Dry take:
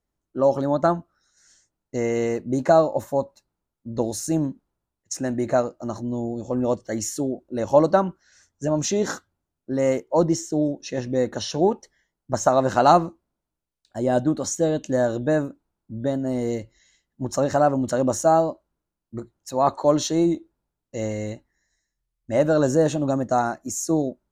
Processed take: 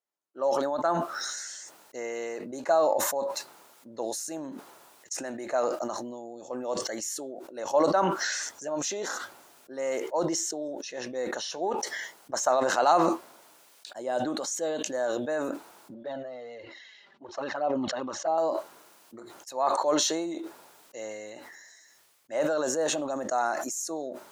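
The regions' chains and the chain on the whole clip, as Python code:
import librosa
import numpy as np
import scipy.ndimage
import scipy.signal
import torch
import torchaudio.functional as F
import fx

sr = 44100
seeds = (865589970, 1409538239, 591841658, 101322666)

y = fx.chain(x, sr, fx.lowpass(hz=4200.0, slope=24),
    fx.env_flanger(rest_ms=5.3, full_db=-13.5), at=(15.94, 18.38))
y = scipy.signal.sosfilt(scipy.signal.butter(2, 570.0, 'highpass', fs=sr, output='sos'), y)
y = fx.sustainer(y, sr, db_per_s=27.0)
y = y * 10.0 ** (-5.5 / 20.0)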